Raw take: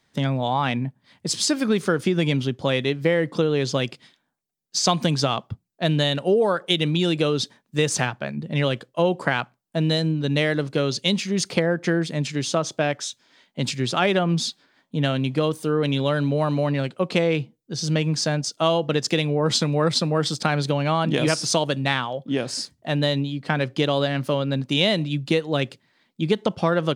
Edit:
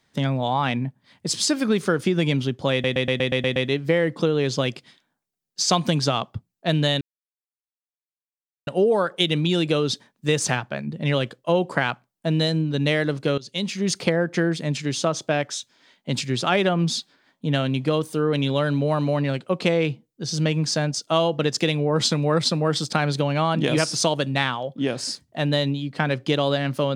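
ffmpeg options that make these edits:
ffmpeg -i in.wav -filter_complex "[0:a]asplit=10[link_01][link_02][link_03][link_04][link_05][link_06][link_07][link_08][link_09][link_10];[link_01]atrim=end=2.842[link_11];[link_02]atrim=start=2.718:end=2.842[link_12];[link_03]atrim=start=2.718:end=2.842[link_13];[link_04]atrim=start=2.718:end=2.842[link_14];[link_05]atrim=start=2.718:end=2.842[link_15];[link_06]atrim=start=2.718:end=2.842[link_16];[link_07]atrim=start=2.718:end=2.842[link_17];[link_08]atrim=start=2.718:end=6.17,asetpts=PTS-STARTPTS,afade=type=out:start_time=3.448:duration=0.004:curve=hsin,apad=pad_dur=1.66[link_18];[link_09]atrim=start=6.17:end=10.88,asetpts=PTS-STARTPTS,afade=type=in:duration=0.004:curve=hsin,afade=type=out:start_time=4.706:duration=0.004:curve=hsin:silence=0.1[link_19];[link_10]atrim=start=10.88,asetpts=PTS-STARTPTS,afade=type=in:duration=0.45:silence=0.1[link_20];[link_11][link_12]acrossfade=duration=0.004:curve1=hsin:curve2=hsin[link_21];[link_21][link_13]acrossfade=duration=0.004:curve1=hsin:curve2=hsin[link_22];[link_22][link_14]acrossfade=duration=0.004:curve1=hsin:curve2=hsin[link_23];[link_23][link_15]acrossfade=duration=0.004:curve1=hsin:curve2=hsin[link_24];[link_24][link_16]acrossfade=duration=0.004:curve1=hsin:curve2=hsin[link_25];[link_25][link_17]acrossfade=duration=0.004:curve1=hsin:curve2=hsin[link_26];[link_18][link_19][link_20]concat=n=3:v=0:a=1[link_27];[link_26][link_27]acrossfade=duration=0.004:curve1=hsin:curve2=hsin" out.wav

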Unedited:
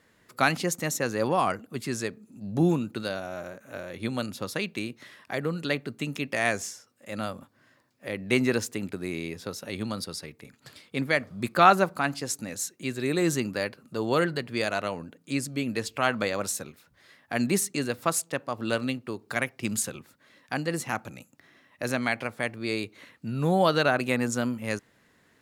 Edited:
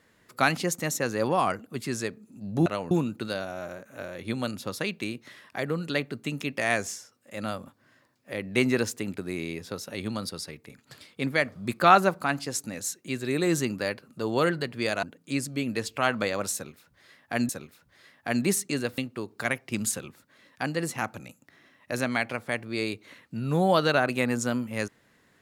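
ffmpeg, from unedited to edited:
ffmpeg -i in.wav -filter_complex "[0:a]asplit=6[link_01][link_02][link_03][link_04][link_05][link_06];[link_01]atrim=end=2.662[link_07];[link_02]atrim=start=14.778:end=15.032[link_08];[link_03]atrim=start=2.658:end=14.782[link_09];[link_04]atrim=start=15.028:end=17.492[link_10];[link_05]atrim=start=16.538:end=18.032[link_11];[link_06]atrim=start=18.888[link_12];[link_07][link_08]acrossfade=duration=0.004:curve1=hsin:curve2=hsin[link_13];[link_13][link_09]acrossfade=duration=0.004:curve1=hsin:curve2=hsin[link_14];[link_14][link_10]acrossfade=duration=0.004:curve1=hsin:curve2=hsin[link_15];[link_15][link_11]acrossfade=duration=0.004:curve1=hsin:curve2=hsin[link_16];[link_16][link_12]acrossfade=duration=0.004:curve1=hsin:curve2=hsin" out.wav

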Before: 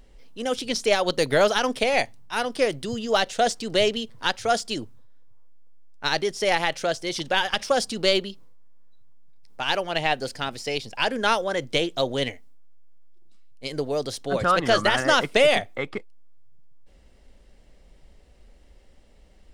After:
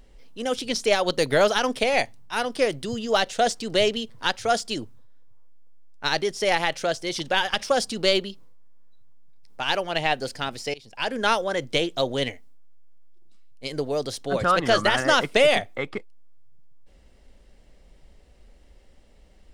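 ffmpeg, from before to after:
ffmpeg -i in.wav -filter_complex "[0:a]asplit=2[link_01][link_02];[link_01]atrim=end=10.74,asetpts=PTS-STARTPTS,afade=type=out:start_time=10.736:duration=0.004:curve=hsin:silence=0.0749894[link_03];[link_02]atrim=start=10.74,asetpts=PTS-STARTPTS,afade=type=in:duration=0.48:silence=0.0749894[link_04];[link_03][link_04]concat=n=2:v=0:a=1" out.wav

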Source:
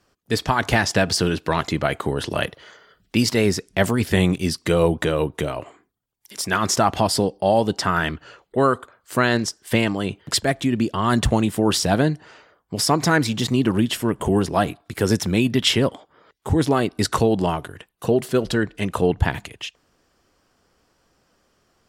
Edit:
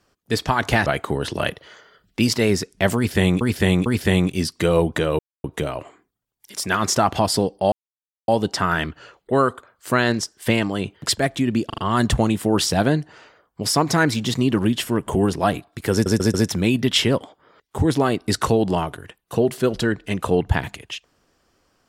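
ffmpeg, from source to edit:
ffmpeg -i in.wav -filter_complex "[0:a]asplit=12[link_01][link_02][link_03][link_04][link_05][link_06][link_07][link_08][link_09][link_10][link_11][link_12];[link_01]atrim=end=0.862[link_13];[link_02]atrim=start=1.818:end=4.372[link_14];[link_03]atrim=start=3.918:end=4.372[link_15];[link_04]atrim=start=3.918:end=5.25,asetpts=PTS-STARTPTS,afade=type=out:start_time=1.328:duration=0.004:curve=hsin,apad=pad_dur=0.25[link_16];[link_05]atrim=start=5.25:end=7.53,asetpts=PTS-STARTPTS,afade=type=in:duration=0.004:curve=hsin,afade=type=out:start_time=2.276:duration=0.004:curve=hsin,apad=pad_dur=0.56[link_17];[link_06]atrim=start=7.53:end=10.952,asetpts=PTS-STARTPTS,afade=type=in:duration=0.004:curve=hsin[link_18];[link_07]atrim=start=10.908:end=10.952[link_19];[link_08]atrim=start=10.908:end=10.952[link_20];[link_09]atrim=start=10.908:end=15.192[link_21];[link_10]atrim=start=15.048:end=15.192[link_22];[link_11]atrim=start=15.048:end=15.192[link_23];[link_12]atrim=start=15.048[link_24];[link_13][link_14]acrossfade=duration=0.004:curve1=hsin:curve2=hsin[link_25];[link_25][link_15]acrossfade=duration=0.004:curve1=hsin:curve2=hsin[link_26];[link_16][link_17][link_18]concat=n=3:v=0:a=1[link_27];[link_26][link_27]acrossfade=duration=0.004:curve1=hsin:curve2=hsin[link_28];[link_28][link_19]acrossfade=duration=0.004:curve1=hsin:curve2=hsin[link_29];[link_29][link_20]acrossfade=duration=0.004:curve1=hsin:curve2=hsin[link_30];[link_30][link_21]acrossfade=duration=0.004:curve1=hsin:curve2=hsin[link_31];[link_31][link_22]acrossfade=duration=0.004:curve1=hsin:curve2=hsin[link_32];[link_32][link_23]acrossfade=duration=0.004:curve1=hsin:curve2=hsin[link_33];[link_33][link_24]acrossfade=duration=0.004:curve1=hsin:curve2=hsin" out.wav

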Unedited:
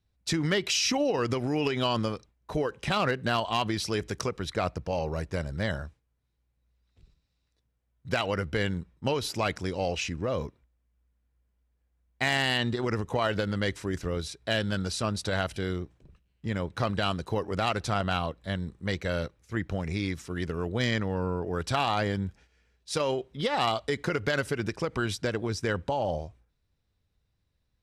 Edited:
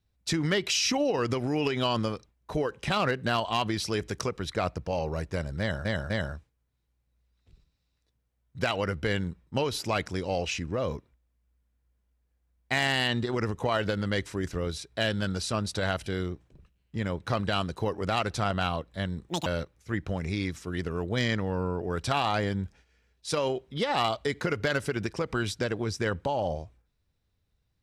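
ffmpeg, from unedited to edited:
ffmpeg -i in.wav -filter_complex "[0:a]asplit=5[link_01][link_02][link_03][link_04][link_05];[link_01]atrim=end=5.852[link_06];[link_02]atrim=start=5.598:end=5.852[link_07];[link_03]atrim=start=5.598:end=18.794[link_08];[link_04]atrim=start=18.79:end=19.09,asetpts=PTS-STARTPTS,asetrate=78057,aresample=44100[link_09];[link_05]atrim=start=19.086[link_10];[link_06][link_07]acrossfade=duration=0.004:curve1=hsin:curve2=hsin[link_11];[link_11][link_08]acrossfade=duration=0.004:curve1=hsin:curve2=hsin[link_12];[link_12][link_09]acrossfade=duration=0.004:curve1=hsin:curve2=hsin[link_13];[link_13][link_10]acrossfade=duration=0.004:curve1=hsin:curve2=hsin" out.wav

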